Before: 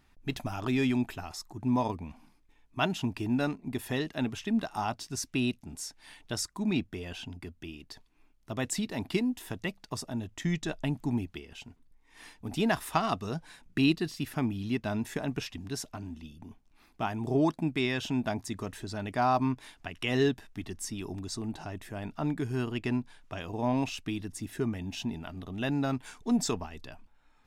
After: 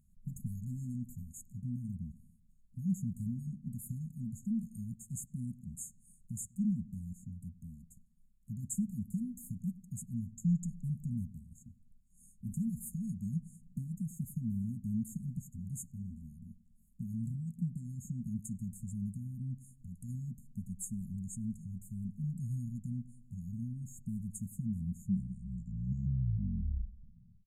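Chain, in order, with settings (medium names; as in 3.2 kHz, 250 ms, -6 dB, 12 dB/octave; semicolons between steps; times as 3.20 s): tape stop on the ending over 2.85 s; peaking EQ 1.4 kHz -10 dB 1.9 oct; peak limiter -25.5 dBFS, peak gain reduction 9.5 dB; brick-wall FIR band-stop 240–6500 Hz; on a send: feedback echo behind a low-pass 98 ms, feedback 54%, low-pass 3.1 kHz, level -18 dB; on the sum: resampled via 32 kHz; peaking EQ 180 Hz +6 dB 0.48 oct; trim -1.5 dB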